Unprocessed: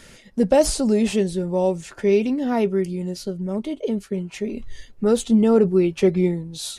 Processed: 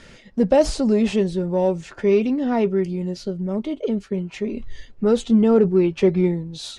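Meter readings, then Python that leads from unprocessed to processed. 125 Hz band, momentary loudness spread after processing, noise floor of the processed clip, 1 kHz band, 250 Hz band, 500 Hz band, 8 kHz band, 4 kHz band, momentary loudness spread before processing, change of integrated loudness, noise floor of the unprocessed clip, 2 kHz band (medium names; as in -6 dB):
+1.0 dB, 12 LU, -48 dBFS, +0.5 dB, +1.0 dB, +0.5 dB, no reading, -1.5 dB, 12 LU, +0.5 dB, -49 dBFS, 0.0 dB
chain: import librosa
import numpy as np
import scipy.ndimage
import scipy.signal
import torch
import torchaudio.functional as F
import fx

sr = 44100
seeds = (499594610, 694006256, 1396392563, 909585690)

p1 = 10.0 ** (-23.0 / 20.0) * np.tanh(x / 10.0 ** (-23.0 / 20.0))
p2 = x + F.gain(torch.from_numpy(p1), -12.0).numpy()
y = fx.air_absorb(p2, sr, metres=92.0)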